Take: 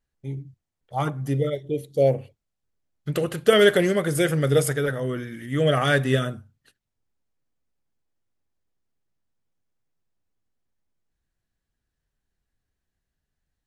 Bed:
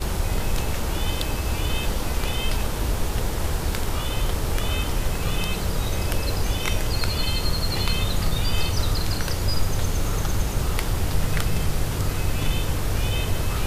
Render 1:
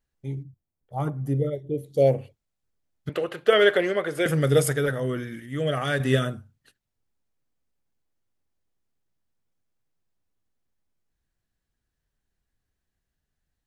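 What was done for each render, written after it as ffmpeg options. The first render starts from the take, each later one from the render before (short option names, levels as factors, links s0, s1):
-filter_complex "[0:a]asettb=1/sr,asplit=3[s0][s1][s2];[s0]atrim=end=0.434[s3];[s1]atrim=start=0.43:end=1.86,asetpts=PTS-STARTPTS,afade=t=in:d=0.004:c=qsin,afade=t=out:st=1.426:d=0.004:c=qsin,equalizer=f=3700:w=0.32:g=-13.5[s4];[s2]atrim=start=1.856[s5];[s3][s4]acrossfade=d=0.004:c1=hsin:c2=qsin[s6];[s6][s5]acrossfade=d=0.004:c1=qsin:c2=hsin,asettb=1/sr,asplit=3[s7][s8][s9];[s7]atrim=end=3.094[s10];[s8]atrim=start=3.09:end=4.26,asetpts=PTS-STARTPTS,afade=t=in:d=0.004:c=qsin,afade=t=out:st=1.166:d=0.004:c=qsin,acrossover=split=330 3900:gain=0.158 1 0.178[s11][s12][s13];[s11][s12][s13]amix=inputs=3:normalize=0[s14];[s9]atrim=start=4.256[s15];[s10][s14]acrossfade=d=0.004:c1=hsin:c2=qsin[s16];[s16][s15]acrossfade=d=0.004:c1=qsin:c2=hsin,asplit=3[s17][s18][s19];[s17]atrim=end=5.402[s20];[s18]atrim=start=5.398:end=6.002,asetpts=PTS-STARTPTS,volume=0.531[s21];[s19]atrim=start=5.998[s22];[s20][s21]acrossfade=d=0.004:c1=hsin:c2=hsin[s23];[s23][s22]acrossfade=d=0.004:c1=hsin:c2=hsin"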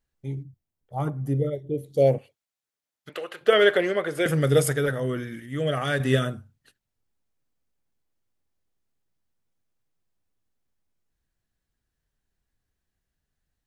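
-filter_complex "[0:a]asettb=1/sr,asplit=3[s0][s1][s2];[s0]atrim=end=2.184[s3];[s1]atrim=start=2.18:end=3.41,asetpts=PTS-STARTPTS,afade=t=in:d=0.004:c=qsin,afade=t=out:st=1.226:d=0.004:c=qsin,highpass=f=1000:p=1[s4];[s2]atrim=start=3.406[s5];[s3][s4]acrossfade=d=0.004:c1=hsin:c2=qsin[s6];[s6][s5]acrossfade=d=0.004:c1=qsin:c2=hsin"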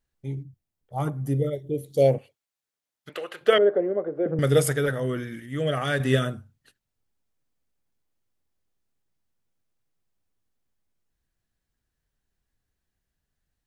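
-filter_complex "[0:a]asettb=1/sr,asplit=3[s0][s1][s2];[s0]atrim=end=0.954[s3];[s1]atrim=start=0.95:end=2.07,asetpts=PTS-STARTPTS,afade=t=in:d=0.004:c=qsin,afade=t=out:st=1.116:d=0.004:c=qsin,highshelf=f=3000:g=7[s4];[s2]atrim=start=2.066[s5];[s3][s4]acrossfade=d=0.004:c1=hsin:c2=qsin[s6];[s6][s5]acrossfade=d=0.004:c1=qsin:c2=hsin,asettb=1/sr,asplit=3[s7][s8][s9];[s7]atrim=end=3.584[s10];[s8]atrim=start=3.58:end=4.39,asetpts=PTS-STARTPTS,afade=t=in:d=0.004:c=qsin,afade=t=out:st=0.806:d=0.004:c=qsin,asuperpass=centerf=360:order=4:qfactor=0.7[s11];[s9]atrim=start=4.386[s12];[s10][s11]acrossfade=d=0.004:c1=hsin:c2=qsin[s13];[s13][s12]acrossfade=d=0.004:c1=qsin:c2=hsin"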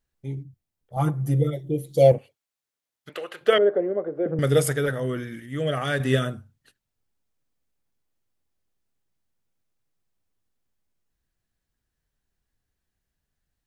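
-filter_complex "[0:a]asettb=1/sr,asplit=3[s0][s1][s2];[s0]atrim=end=0.964[s3];[s1]atrim=start=0.96:end=2.12,asetpts=PTS-STARTPTS,afade=t=in:d=0.004:c=qsin,afade=t=out:st=1.156:d=0.004:c=qsin,aecho=1:1:5.9:1,atrim=end_sample=51156[s4];[s2]atrim=start=2.116[s5];[s3][s4]acrossfade=d=0.004:c1=hsin:c2=qsin[s6];[s6][s5]acrossfade=d=0.004:c1=qsin:c2=hsin"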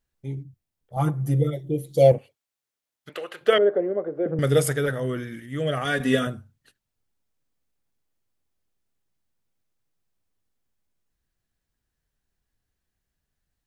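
-filter_complex "[0:a]asettb=1/sr,asplit=3[s0][s1][s2];[s0]atrim=end=5.854[s3];[s1]atrim=start=5.85:end=6.27,asetpts=PTS-STARTPTS,afade=t=in:d=0.004:c=qsin,afade=t=out:st=0.416:d=0.004:c=qsin,aecho=1:1:4.2:0.65,atrim=end_sample=18522[s4];[s2]atrim=start=6.266[s5];[s3][s4]acrossfade=d=0.004:c1=hsin:c2=qsin[s6];[s6][s5]acrossfade=d=0.004:c1=qsin:c2=hsin"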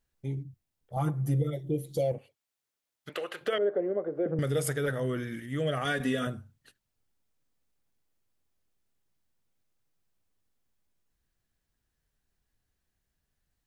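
-af "acompressor=threshold=0.0224:ratio=1.5,alimiter=limit=0.106:level=0:latency=1:release=103"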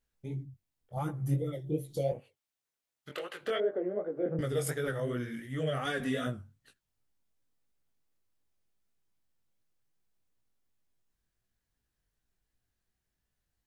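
-af "flanger=delay=16:depth=6.4:speed=2.7"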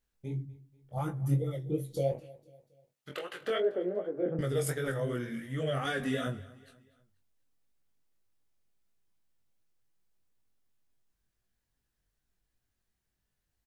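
-filter_complex "[0:a]asplit=2[s0][s1];[s1]adelay=22,volume=0.316[s2];[s0][s2]amix=inputs=2:normalize=0,aecho=1:1:243|486|729:0.0891|0.0401|0.018"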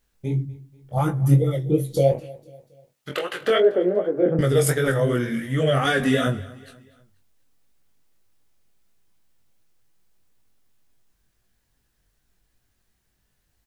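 -af "volume=3.98"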